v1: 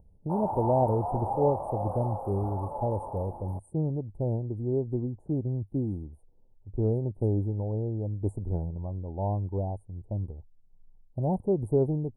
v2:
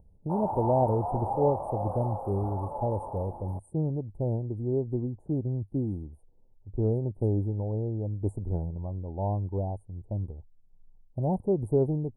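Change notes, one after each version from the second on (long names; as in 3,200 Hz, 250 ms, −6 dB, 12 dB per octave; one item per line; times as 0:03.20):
background: add high-shelf EQ 9,500 Hz −4 dB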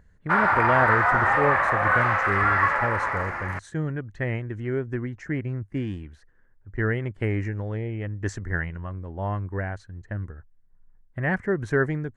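background +4.5 dB
master: remove Chebyshev band-stop filter 880–9,100 Hz, order 5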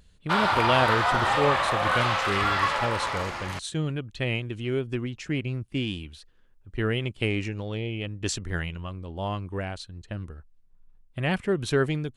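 speech: add thirty-one-band graphic EQ 100 Hz −5 dB, 1,250 Hz +4 dB, 2,500 Hz +8 dB, 6,300 Hz −5 dB, 10,000 Hz +5 dB
master: add high shelf with overshoot 2,500 Hz +11 dB, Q 3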